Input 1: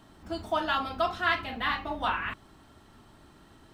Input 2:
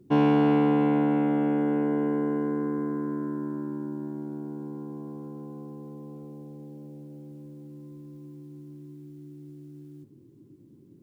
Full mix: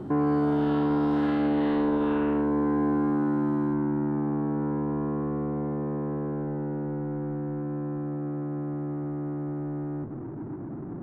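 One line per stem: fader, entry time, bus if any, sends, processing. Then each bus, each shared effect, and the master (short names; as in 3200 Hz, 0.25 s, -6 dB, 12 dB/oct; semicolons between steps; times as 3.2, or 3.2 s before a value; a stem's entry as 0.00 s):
-4.5 dB, 0.00 s, no send, time blur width 0.214 s
-2.0 dB, 0.00 s, no send, power-law curve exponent 0.5; LPF 1500 Hz 24 dB/oct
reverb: off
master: limiter -19.5 dBFS, peak gain reduction 5.5 dB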